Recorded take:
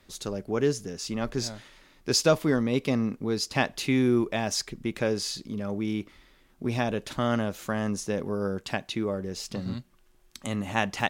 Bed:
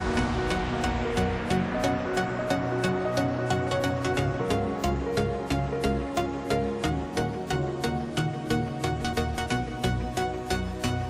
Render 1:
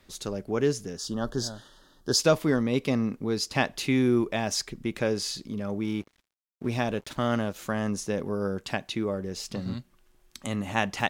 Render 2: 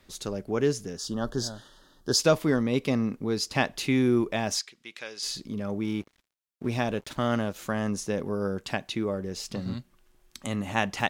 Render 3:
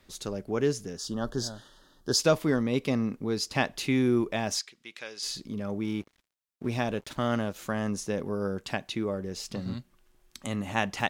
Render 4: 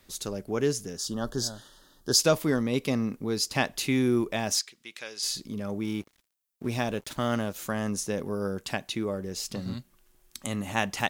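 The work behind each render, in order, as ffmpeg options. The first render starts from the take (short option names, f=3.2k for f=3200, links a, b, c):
-filter_complex "[0:a]asettb=1/sr,asplit=3[a][b][c];[a]atrim=end=0.974[d];[b]atrim=start=0.97:end=2.19,asetpts=PTS-STARTPTS,afade=t=in:d=0.004:c=qsin,afade=t=out:st=1.216:d=0.004:c=qsin,asuperstop=centerf=2300:order=8:qfactor=1.9[e];[c]atrim=start=2.186[f];[d][e]acrossfade=d=0.004:c1=hsin:c2=qsin[g];[g][f]acrossfade=d=0.004:c1=qsin:c2=hsin,asettb=1/sr,asplit=3[h][i][j];[h]atrim=end=5.834[k];[i]atrim=start=5.83:end=7.56,asetpts=PTS-STARTPTS,afade=t=in:d=0.004:c=qsin,afade=t=out:st=1.726:d=0.004:c=qsin,aeval=exprs='sgn(val(0))*max(abs(val(0))-0.00316,0)':c=same[l];[j]atrim=start=7.556[m];[k][l]acrossfade=d=0.004:c1=hsin:c2=qsin[n];[n][m]acrossfade=d=0.004:c1=qsin:c2=hsin"
-filter_complex "[0:a]asettb=1/sr,asplit=3[a][b][c];[a]atrim=end=4.594[d];[b]atrim=start=4.59:end=5.23,asetpts=PTS-STARTPTS,afade=t=in:d=0.004:c=qsin,afade=t=out:st=0.636:d=0.004:c=qsin,bandpass=f=3.9k:t=q:w=0.81[e];[c]atrim=start=5.226[f];[d][e]acrossfade=d=0.004:c1=hsin:c2=qsin[g];[g][f]acrossfade=d=0.004:c1=qsin:c2=hsin"
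-af "volume=-1.5dB"
-af "highshelf=f=7.1k:g=11"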